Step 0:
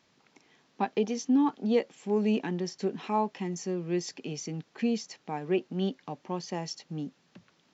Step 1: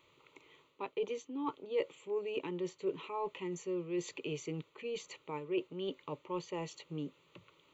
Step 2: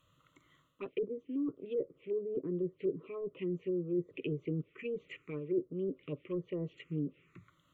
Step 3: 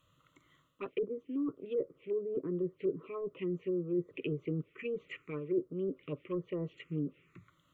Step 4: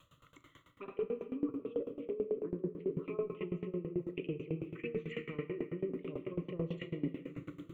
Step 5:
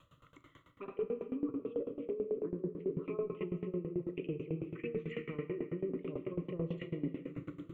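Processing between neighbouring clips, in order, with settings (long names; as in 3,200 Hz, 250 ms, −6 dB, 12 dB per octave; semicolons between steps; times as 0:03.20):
reversed playback; downward compressor 6 to 1, threshold −34 dBFS, peak gain reduction 13 dB; reversed playback; phaser with its sweep stopped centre 1,100 Hz, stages 8; level +4 dB
phaser swept by the level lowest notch 370 Hz, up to 2,700 Hz, full sweep at −35 dBFS; treble cut that deepens with the level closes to 440 Hz, closed at −34.5 dBFS; phaser with its sweep stopped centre 2,100 Hz, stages 4; level +6.5 dB
dynamic equaliser 1,300 Hz, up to +8 dB, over −57 dBFS, Q 1.1
reversed playback; downward compressor, threshold −41 dBFS, peak gain reduction 13 dB; reversed playback; rectangular room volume 150 cubic metres, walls hard, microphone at 0.31 metres; tremolo with a ramp in dB decaying 9.1 Hz, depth 20 dB; level +10.5 dB
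high-shelf EQ 3,100 Hz −9 dB; in parallel at +3 dB: brickwall limiter −30 dBFS, peak gain reduction 7 dB; on the sum: level −6 dB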